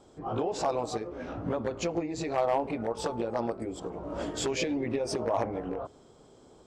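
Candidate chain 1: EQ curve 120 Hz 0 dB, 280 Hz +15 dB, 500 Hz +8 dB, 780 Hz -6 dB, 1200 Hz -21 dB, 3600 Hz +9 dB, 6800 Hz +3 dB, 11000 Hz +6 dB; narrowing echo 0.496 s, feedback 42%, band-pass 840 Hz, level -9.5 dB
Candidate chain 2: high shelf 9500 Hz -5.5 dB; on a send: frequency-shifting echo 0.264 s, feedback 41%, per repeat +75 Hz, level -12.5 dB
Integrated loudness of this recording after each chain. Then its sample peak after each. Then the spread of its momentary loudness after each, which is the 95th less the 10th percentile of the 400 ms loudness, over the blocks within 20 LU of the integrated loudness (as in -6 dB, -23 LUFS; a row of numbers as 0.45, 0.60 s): -23.0, -32.0 LUFS; -7.5, -16.5 dBFS; 9, 8 LU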